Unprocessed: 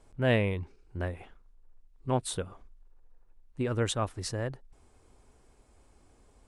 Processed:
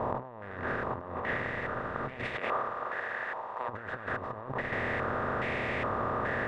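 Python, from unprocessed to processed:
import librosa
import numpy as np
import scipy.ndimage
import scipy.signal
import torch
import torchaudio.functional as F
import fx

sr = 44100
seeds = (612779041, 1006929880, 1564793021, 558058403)

y = fx.bin_compress(x, sr, power=0.2)
y = fx.highpass(y, sr, hz=fx.line((2.35, 350.0), (3.68, 1000.0)), slope=12, at=(2.35, 3.68), fade=0.02)
y = fx.over_compress(y, sr, threshold_db=-28.0, ratio=-0.5)
y = fx.echo_diffused(y, sr, ms=469, feedback_pct=55, wet_db=-14)
y = fx.filter_held_lowpass(y, sr, hz=2.4, low_hz=980.0, high_hz=2200.0)
y = y * 10.0 ** (-8.5 / 20.0)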